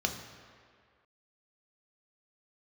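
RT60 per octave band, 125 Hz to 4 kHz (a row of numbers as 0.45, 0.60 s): 1.6, 1.7, 2.0, 2.1, 2.0, 1.5 s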